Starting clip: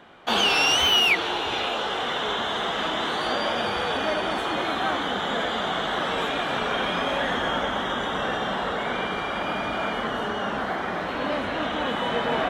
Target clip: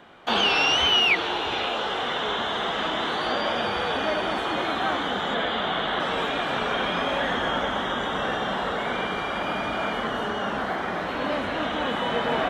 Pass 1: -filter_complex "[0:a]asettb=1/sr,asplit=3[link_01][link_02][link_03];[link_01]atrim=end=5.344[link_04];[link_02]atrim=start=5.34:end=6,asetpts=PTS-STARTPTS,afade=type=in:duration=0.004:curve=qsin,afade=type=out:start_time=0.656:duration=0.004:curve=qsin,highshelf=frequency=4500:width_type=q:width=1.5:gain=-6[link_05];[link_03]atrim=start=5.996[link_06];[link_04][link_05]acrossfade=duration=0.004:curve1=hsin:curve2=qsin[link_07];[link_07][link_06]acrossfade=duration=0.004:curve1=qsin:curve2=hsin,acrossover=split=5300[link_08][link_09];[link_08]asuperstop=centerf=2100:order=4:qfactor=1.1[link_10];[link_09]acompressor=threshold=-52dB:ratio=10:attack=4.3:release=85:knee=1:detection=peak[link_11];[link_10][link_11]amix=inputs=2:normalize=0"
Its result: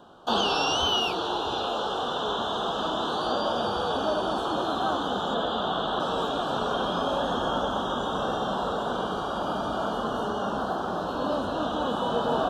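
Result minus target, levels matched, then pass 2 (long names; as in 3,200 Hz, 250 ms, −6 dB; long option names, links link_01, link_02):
2,000 Hz band −7.0 dB
-filter_complex "[0:a]asettb=1/sr,asplit=3[link_01][link_02][link_03];[link_01]atrim=end=5.344[link_04];[link_02]atrim=start=5.34:end=6,asetpts=PTS-STARTPTS,afade=type=in:duration=0.004:curve=qsin,afade=type=out:start_time=0.656:duration=0.004:curve=qsin,highshelf=frequency=4500:width_type=q:width=1.5:gain=-6[link_05];[link_03]atrim=start=5.996[link_06];[link_04][link_05]acrossfade=duration=0.004:curve1=hsin:curve2=qsin[link_07];[link_07][link_06]acrossfade=duration=0.004:curve1=qsin:curve2=hsin,acrossover=split=5300[link_08][link_09];[link_09]acompressor=threshold=-52dB:ratio=10:attack=4.3:release=85:knee=1:detection=peak[link_10];[link_08][link_10]amix=inputs=2:normalize=0"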